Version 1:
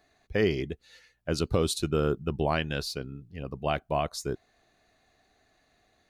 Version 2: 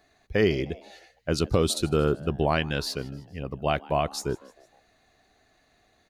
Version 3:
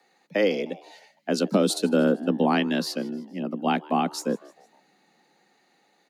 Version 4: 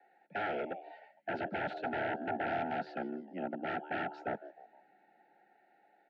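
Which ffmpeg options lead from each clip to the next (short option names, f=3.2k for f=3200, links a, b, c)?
-filter_complex "[0:a]asplit=4[a][b][c][d];[b]adelay=154,afreqshift=130,volume=-22.5dB[e];[c]adelay=308,afreqshift=260,volume=-28.3dB[f];[d]adelay=462,afreqshift=390,volume=-34.2dB[g];[a][e][f][g]amix=inputs=4:normalize=0,volume=3dB"
-filter_complex "[0:a]highpass=110,acrossover=split=210|1000|4400[a][b][c][d];[a]dynaudnorm=f=570:g=5:m=9dB[e];[e][b][c][d]amix=inputs=4:normalize=0,afreqshift=97"
-af "aeval=exprs='0.0531*(abs(mod(val(0)/0.0531+3,4)-2)-1)':c=same,asuperstop=centerf=1100:order=12:qfactor=2.4,highpass=170,equalizer=f=170:t=q:w=4:g=-9,equalizer=f=250:t=q:w=4:g=-8,equalizer=f=480:t=q:w=4:g=-6,equalizer=f=690:t=q:w=4:g=6,equalizer=f=1.2k:t=q:w=4:g=7,equalizer=f=2.1k:t=q:w=4:g=-5,lowpass=f=2.2k:w=0.5412,lowpass=f=2.2k:w=1.3066,volume=-2dB"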